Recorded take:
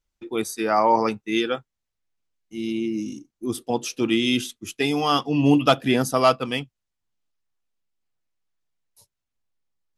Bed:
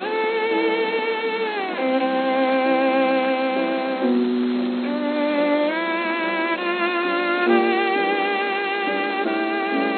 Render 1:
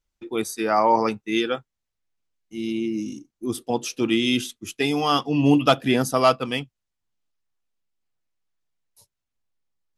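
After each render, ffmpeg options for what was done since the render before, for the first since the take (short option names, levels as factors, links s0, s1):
-af anull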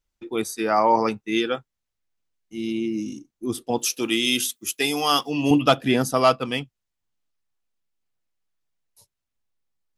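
-filter_complex "[0:a]asettb=1/sr,asplit=3[s0][s1][s2];[s0]atrim=end=3.784[s3];[s1]atrim=start=3.78:end=5.51,asetpts=PTS-STARTPTS,afade=t=in:d=0.004:c=qsin,afade=t=out:st=1.726:d=0.004:c=qsin,aemphasis=mode=production:type=bsi[s4];[s2]atrim=start=5.506[s5];[s3][s4]acrossfade=d=0.004:c1=hsin:c2=qsin[s6];[s6][s5]acrossfade=d=0.004:c1=qsin:c2=hsin"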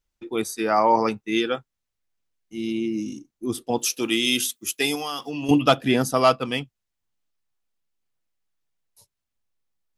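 -filter_complex "[0:a]asettb=1/sr,asplit=3[s0][s1][s2];[s0]atrim=end=4.954[s3];[s1]atrim=start=4.95:end=5.49,asetpts=PTS-STARTPTS,afade=t=in:d=0.004:c=qsin,afade=t=out:st=0.536:d=0.004:c=qsin,acompressor=threshold=0.0501:ratio=6:attack=3.2:release=140:knee=1:detection=peak[s4];[s2]atrim=start=5.486[s5];[s3][s4]acrossfade=d=0.004:c1=hsin:c2=qsin[s6];[s6][s5]acrossfade=d=0.004:c1=qsin:c2=hsin"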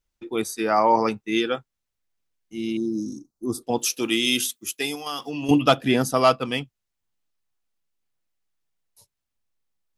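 -filter_complex "[0:a]asettb=1/sr,asplit=3[s0][s1][s2];[s0]atrim=end=2.774[s3];[s1]atrim=start=2.77:end=3.63,asetpts=PTS-STARTPTS,afade=t=in:d=0.004:c=qsin,afade=t=out:st=0.856:d=0.004:c=qsin,asuperstop=centerf=2400:order=8:qfactor=0.88[s4];[s2]atrim=start=3.626[s5];[s3][s4]acrossfade=d=0.004:c1=hsin:c2=qsin[s6];[s6][s5]acrossfade=d=0.004:c1=qsin:c2=hsin,asplit=2[s7][s8];[s7]atrim=end=5.06,asetpts=PTS-STARTPTS,afade=t=out:st=4.38:d=0.68:silence=0.473151[s9];[s8]atrim=start=5.06,asetpts=PTS-STARTPTS,afade=t=in:d=0.004:c=hsin:silence=0.473151[s10];[s9][s10]concat=n=2:v=0:a=1"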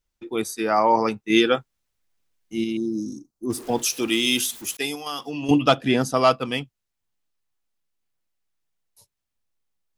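-filter_complex "[0:a]asettb=1/sr,asplit=3[s0][s1][s2];[s0]atrim=end=3.504[s3];[s1]atrim=start=3.5:end=4.77,asetpts=PTS-STARTPTS,afade=t=in:d=0.004:c=qsin,afade=t=out:st=1.266:d=0.004:c=qsin,aeval=exprs='val(0)+0.5*0.0158*sgn(val(0))':c=same[s4];[s2]atrim=start=4.766[s5];[s3][s4]acrossfade=d=0.004:c1=hsin:c2=qsin[s6];[s6][s5]acrossfade=d=0.004:c1=qsin:c2=hsin,asettb=1/sr,asplit=3[s7][s8][s9];[s7]atrim=end=5.394[s10];[s8]atrim=start=5.39:end=6.31,asetpts=PTS-STARTPTS,afade=t=in:d=0.004:c=qsin,afade=t=out:st=0.916:d=0.004:c=qsin,lowpass=9000[s11];[s9]atrim=start=6.306[s12];[s10][s11]acrossfade=d=0.004:c1=hsin:c2=qsin[s13];[s13][s12]acrossfade=d=0.004:c1=qsin:c2=hsin,asplit=3[s14][s15][s16];[s14]atrim=end=1.302[s17];[s15]atrim=start=1.298:end=2.642,asetpts=PTS-STARTPTS,volume=1.88[s18];[s16]atrim=start=2.638[s19];[s17][s18]acrossfade=d=0.004:c1=hsin:c2=hsin[s20];[s20][s19]acrossfade=d=0.004:c1=hsin:c2=hsin"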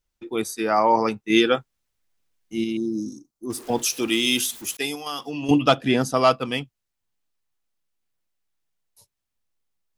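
-filter_complex "[0:a]asettb=1/sr,asplit=3[s0][s1][s2];[s0]atrim=end=3.094[s3];[s1]atrim=start=3.09:end=3.7,asetpts=PTS-STARTPTS,afade=t=in:d=0.004:c=qsin,afade=t=out:st=0.606:d=0.004:c=qsin,lowshelf=f=490:g=-5.5[s4];[s2]atrim=start=3.696[s5];[s3][s4]acrossfade=d=0.004:c1=hsin:c2=qsin[s6];[s6][s5]acrossfade=d=0.004:c1=qsin:c2=hsin"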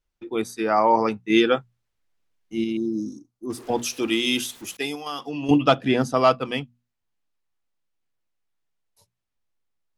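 -af "aemphasis=mode=reproduction:type=cd,bandreject=f=60:t=h:w=6,bandreject=f=120:t=h:w=6,bandreject=f=180:t=h:w=6,bandreject=f=240:t=h:w=6"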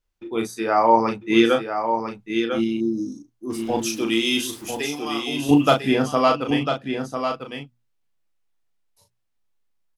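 -filter_complex "[0:a]asplit=2[s0][s1];[s1]adelay=35,volume=0.562[s2];[s0][s2]amix=inputs=2:normalize=0,aecho=1:1:998:0.447"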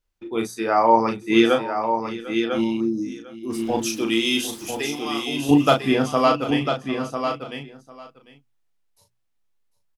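-af "aecho=1:1:749:0.141"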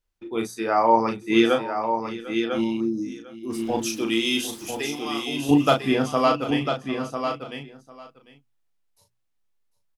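-af "volume=0.794"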